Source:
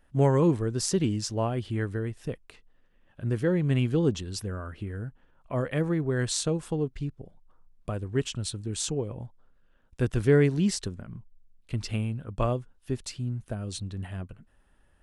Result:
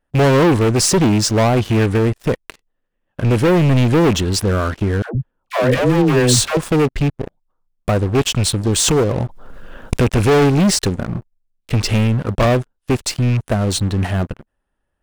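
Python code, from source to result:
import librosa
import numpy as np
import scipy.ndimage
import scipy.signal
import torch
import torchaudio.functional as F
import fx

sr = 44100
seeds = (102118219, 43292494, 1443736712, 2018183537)

y = fx.rattle_buzz(x, sr, strikes_db=-30.0, level_db=-34.0)
y = fx.peak_eq(y, sr, hz=590.0, db=5.0, octaves=2.8)
y = fx.leveller(y, sr, passes=5)
y = fx.dispersion(y, sr, late='lows', ms=130.0, hz=480.0, at=(5.02, 6.57))
y = fx.pre_swell(y, sr, db_per_s=36.0, at=(8.75, 10.01), fade=0.02)
y = F.gain(torch.from_numpy(y), -1.5).numpy()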